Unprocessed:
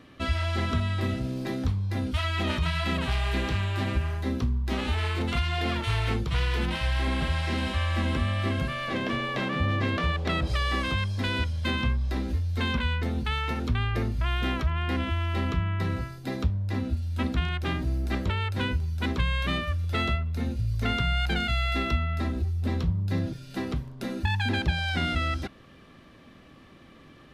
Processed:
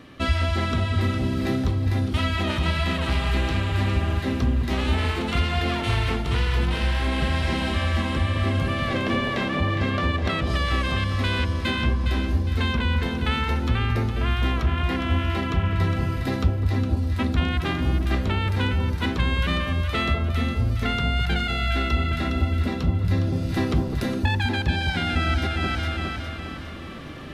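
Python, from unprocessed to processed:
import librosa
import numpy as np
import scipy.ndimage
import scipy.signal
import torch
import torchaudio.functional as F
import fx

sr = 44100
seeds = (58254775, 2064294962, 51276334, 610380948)

y = fx.echo_alternate(x, sr, ms=205, hz=1000.0, feedback_pct=68, wet_db=-4.5)
y = fx.rider(y, sr, range_db=10, speed_s=0.5)
y = F.gain(torch.from_numpy(y), 3.0).numpy()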